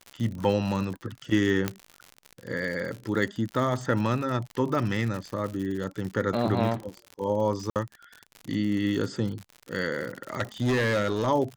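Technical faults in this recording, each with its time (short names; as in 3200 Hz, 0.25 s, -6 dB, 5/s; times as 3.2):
crackle 76/s -32 dBFS
1.68 pop -11 dBFS
7.7–7.76 gap 58 ms
10.33–11.28 clipped -21 dBFS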